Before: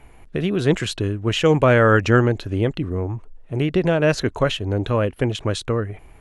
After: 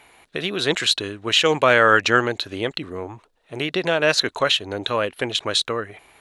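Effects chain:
high-pass filter 1,100 Hz 6 dB per octave
parametric band 3,900 Hz +8.5 dB 0.39 octaves
level +5.5 dB

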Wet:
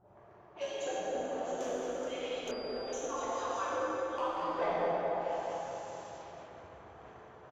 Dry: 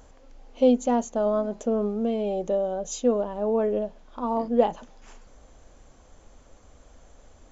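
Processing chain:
harmonic-percussive split with one part muted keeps percussive
repeating echo 212 ms, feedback 45%, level −8 dB
treble cut that deepens with the level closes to 430 Hz, closed at −32 dBFS
low-shelf EQ 370 Hz −12 dB
soft clipping −36.5 dBFS, distortion −9 dB
dense smooth reverb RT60 3.8 s, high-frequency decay 0.7×, DRR −9.5 dB
low-pass that shuts in the quiet parts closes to 470 Hz, open at −42.5 dBFS
0:02.51–0:02.93: switching amplifier with a slow clock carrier 4,800 Hz
level +3 dB

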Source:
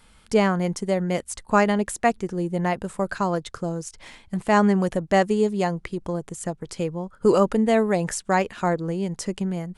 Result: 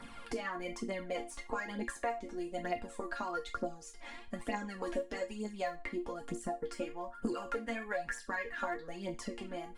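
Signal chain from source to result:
0:06.65–0:08.88: parametric band 1,600 Hz +9 dB 0.5 octaves
harmonic and percussive parts rebalanced harmonic −13 dB
high-shelf EQ 4,700 Hz −11.5 dB
downward compressor, threshold −27 dBFS, peak gain reduction 10.5 dB
resonators tuned to a chord A#3 minor, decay 0.25 s
phase shifter 1.1 Hz, delay 3.6 ms, feedback 56%
multiband upward and downward compressor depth 70%
level +10 dB

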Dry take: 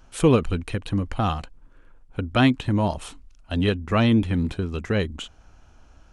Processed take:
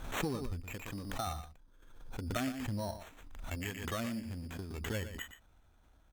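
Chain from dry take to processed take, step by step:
decimation without filtering 9×
0:00.60–0:01.27: low-shelf EQ 250 Hz −7 dB
tube saturation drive 14 dB, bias 0.75
noise reduction from a noise print of the clip's start 9 dB
downward compressor 6 to 1, threshold −33 dBFS, peak gain reduction 14 dB
0:03.55–0:04.78: low-shelf EQ 120 Hz −9 dB
single-tap delay 118 ms −11.5 dB
background raised ahead of every attack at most 52 dB per second
level −1 dB

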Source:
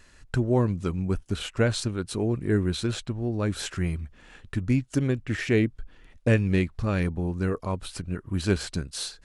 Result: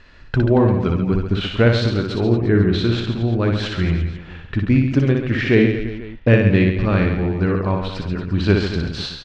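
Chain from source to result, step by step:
low-pass filter 4,300 Hz 24 dB per octave
reverse bouncing-ball delay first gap 60 ms, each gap 1.25×, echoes 5
level +7 dB

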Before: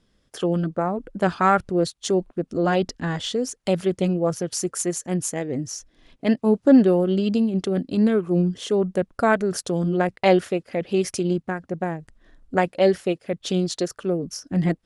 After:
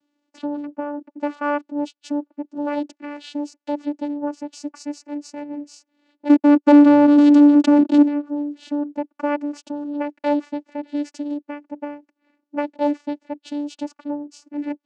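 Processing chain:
low-shelf EQ 240 Hz −11 dB
0:06.29–0:08.02: leveller curve on the samples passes 5
channel vocoder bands 8, saw 291 Hz
level +2 dB

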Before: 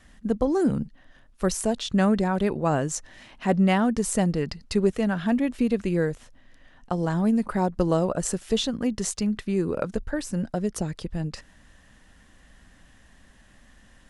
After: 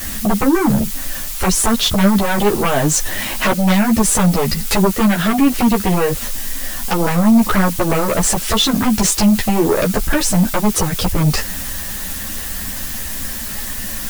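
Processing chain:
downward compressor 12 to 1, threshold −30 dBFS, peak gain reduction 14.5 dB
background noise blue −50 dBFS
sine wavefolder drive 15 dB, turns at −16.5 dBFS
string-ensemble chorus
level +8.5 dB

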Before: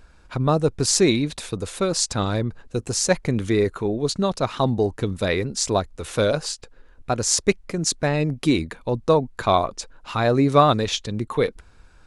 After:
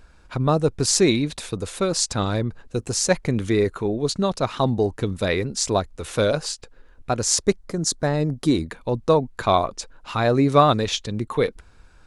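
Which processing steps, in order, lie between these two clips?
0:07.46–0:08.66: parametric band 2,500 Hz −11 dB 0.57 octaves

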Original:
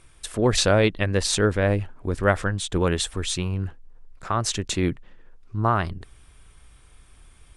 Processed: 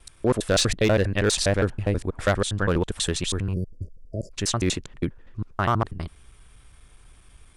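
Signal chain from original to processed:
slices reordered back to front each 81 ms, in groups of 3
time-frequency box erased 0:03.54–0:04.32, 650–4,500 Hz
gain into a clipping stage and back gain 13.5 dB

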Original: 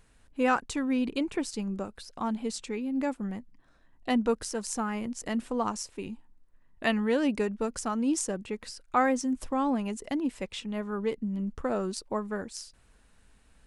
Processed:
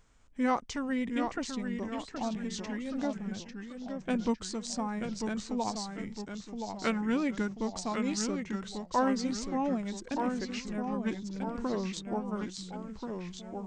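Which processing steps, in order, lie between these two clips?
formants moved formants −4 semitones
downsampling to 22,050 Hz
delay with pitch and tempo change per echo 690 ms, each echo −1 semitone, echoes 3, each echo −6 dB
level −3 dB

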